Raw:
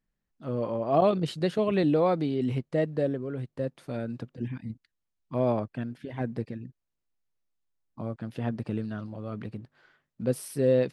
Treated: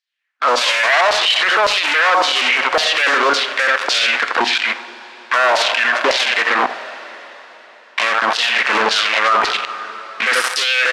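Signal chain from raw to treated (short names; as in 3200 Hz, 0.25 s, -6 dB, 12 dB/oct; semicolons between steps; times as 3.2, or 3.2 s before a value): three-band isolator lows -14 dB, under 250 Hz, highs -14 dB, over 2900 Hz; feedback echo 84 ms, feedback 16%, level -12.5 dB; sample leveller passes 5; BPF 130–6500 Hz; LFO high-pass saw down 1.8 Hz 870–4700 Hz; vocal rider within 3 dB 2 s; two-slope reverb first 0.44 s, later 4.1 s, from -18 dB, DRR 15 dB; maximiser +31.5 dB; gain -5 dB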